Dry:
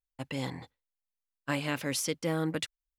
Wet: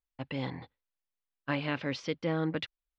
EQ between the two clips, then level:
low-pass filter 4,500 Hz 24 dB per octave
high-frequency loss of the air 78 metres
0.0 dB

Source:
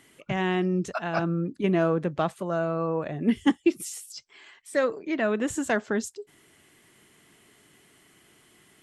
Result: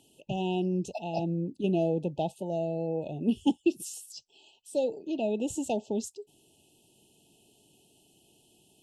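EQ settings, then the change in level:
linear-phase brick-wall band-stop 930–2,500 Hz
−3.5 dB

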